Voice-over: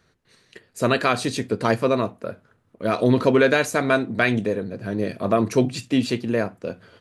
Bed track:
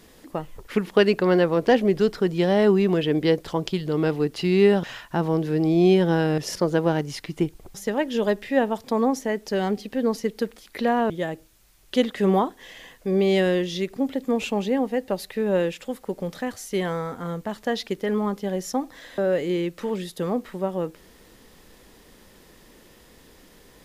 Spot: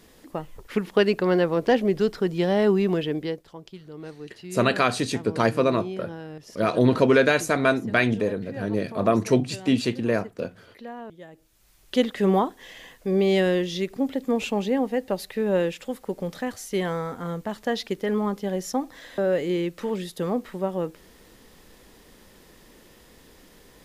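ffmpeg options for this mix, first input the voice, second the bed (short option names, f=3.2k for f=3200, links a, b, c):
-filter_complex "[0:a]adelay=3750,volume=-1dB[a];[1:a]volume=14dB,afade=t=out:st=2.93:d=0.52:silence=0.188365,afade=t=in:st=11.32:d=0.41:silence=0.158489[b];[a][b]amix=inputs=2:normalize=0"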